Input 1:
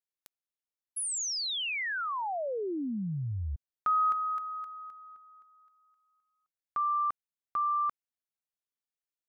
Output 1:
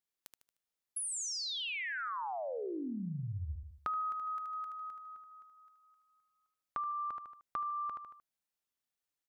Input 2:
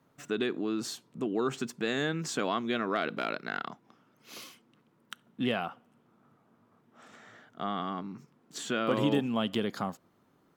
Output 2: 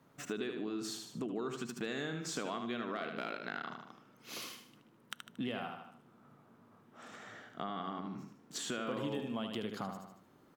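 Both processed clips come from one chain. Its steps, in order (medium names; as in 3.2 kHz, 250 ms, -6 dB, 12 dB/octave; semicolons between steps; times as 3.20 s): feedback delay 76 ms, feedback 38%, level -7 dB; compression 3:1, threshold -41 dBFS; trim +2 dB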